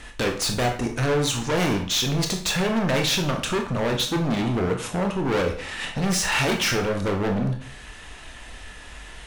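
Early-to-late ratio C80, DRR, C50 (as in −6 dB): 13.0 dB, 3.0 dB, 8.5 dB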